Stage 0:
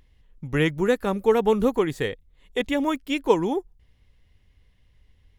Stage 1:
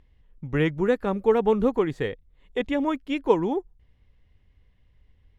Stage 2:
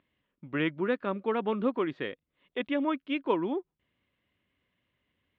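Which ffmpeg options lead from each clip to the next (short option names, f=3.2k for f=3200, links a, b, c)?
-af "aemphasis=mode=reproduction:type=75fm,volume=-1.5dB"
-af "highpass=290,equalizer=f=450:t=q:w=4:g=-10,equalizer=f=810:t=q:w=4:g=-10,equalizer=f=1.9k:t=q:w=4:g=-4,lowpass=f=3.5k:w=0.5412,lowpass=f=3.5k:w=1.3066"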